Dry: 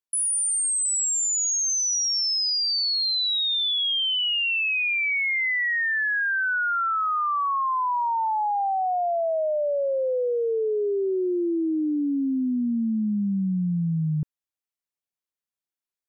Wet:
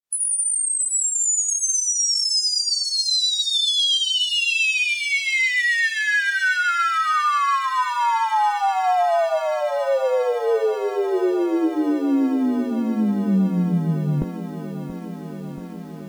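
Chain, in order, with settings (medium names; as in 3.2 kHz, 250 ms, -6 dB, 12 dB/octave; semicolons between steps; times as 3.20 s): spectral peaks clipped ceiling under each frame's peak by 25 dB; granulator 150 ms, grains 20 per s, spray 16 ms, pitch spread up and down by 0 st; vibrato 8.3 Hz 20 cents; on a send: feedback echo behind a high-pass 1098 ms, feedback 64%, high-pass 4.4 kHz, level -18 dB; on the sum: bit-crushed delay 681 ms, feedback 80%, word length 9-bit, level -13 dB; trim +8.5 dB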